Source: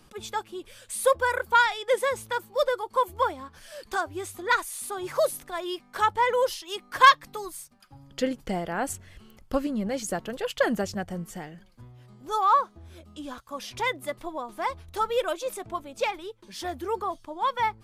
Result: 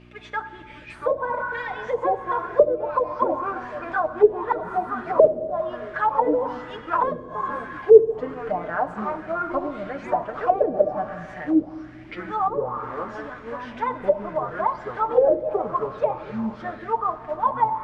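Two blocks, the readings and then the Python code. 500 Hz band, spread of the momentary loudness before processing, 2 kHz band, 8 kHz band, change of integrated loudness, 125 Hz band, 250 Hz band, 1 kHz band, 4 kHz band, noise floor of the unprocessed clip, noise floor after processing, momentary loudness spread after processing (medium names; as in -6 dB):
+8.0 dB, 17 LU, -4.0 dB, under -25 dB, +3.5 dB, +1.5 dB, +5.0 dB, +1.5 dB, under -15 dB, -56 dBFS, -42 dBFS, 13 LU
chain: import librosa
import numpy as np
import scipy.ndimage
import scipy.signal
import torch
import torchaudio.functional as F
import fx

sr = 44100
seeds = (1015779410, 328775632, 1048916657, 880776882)

y = fx.tilt_eq(x, sr, slope=1.5)
y = y + 0.73 * np.pad(y, (int(6.6 * sr / 1000.0), 0))[:len(y)]
y = fx.spec_repair(y, sr, seeds[0], start_s=1.34, length_s=0.63, low_hz=870.0, high_hz=1800.0, source='both')
y = fx.dmg_buzz(y, sr, base_hz=60.0, harmonics=6, level_db=-45.0, tilt_db=-2, odd_only=False)
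y = fx.peak_eq(y, sr, hz=630.0, db=14.0, octaves=0.24)
y = fx.mod_noise(y, sr, seeds[1], snr_db=12)
y = fx.echo_pitch(y, sr, ms=546, semitones=-6, count=3, db_per_echo=-6.0)
y = fx.rev_plate(y, sr, seeds[2], rt60_s=2.4, hf_ratio=0.9, predelay_ms=0, drr_db=9.5)
y = fx.envelope_lowpass(y, sr, base_hz=440.0, top_hz=2600.0, q=3.2, full_db=-13.5, direction='down')
y = y * librosa.db_to_amplitude(-5.0)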